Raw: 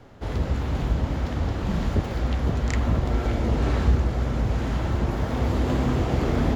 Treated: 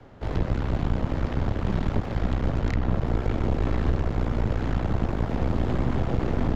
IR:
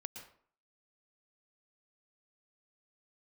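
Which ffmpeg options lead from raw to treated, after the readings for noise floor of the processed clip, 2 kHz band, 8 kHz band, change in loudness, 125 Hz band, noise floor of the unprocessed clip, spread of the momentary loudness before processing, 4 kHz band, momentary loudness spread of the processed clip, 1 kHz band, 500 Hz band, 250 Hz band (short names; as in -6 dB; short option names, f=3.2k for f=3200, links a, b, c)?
-32 dBFS, -3.0 dB, n/a, -2.0 dB, -2.0 dB, -30 dBFS, 4 LU, -5.0 dB, 2 LU, -2.0 dB, -1.5 dB, -1.5 dB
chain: -filter_complex "[0:a]aeval=exprs='0.398*(cos(1*acos(clip(val(0)/0.398,-1,1)))-cos(1*PI/2))+0.0891*(cos(6*acos(clip(val(0)/0.398,-1,1)))-cos(6*PI/2))':c=same,acrossover=split=180|430|5800[a][b][c][d];[a]acompressor=threshold=-20dB:ratio=4[e];[b]acompressor=threshold=-31dB:ratio=4[f];[c]acompressor=threshold=-33dB:ratio=4[g];[d]acompressor=threshold=-56dB:ratio=4[h];[e][f][g][h]amix=inputs=4:normalize=0,aemphasis=mode=reproduction:type=50kf"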